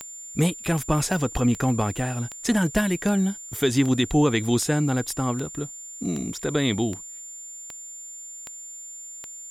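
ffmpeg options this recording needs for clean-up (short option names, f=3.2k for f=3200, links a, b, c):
-af "adeclick=t=4,bandreject=f=7.2k:w=30,agate=range=-21dB:threshold=-32dB"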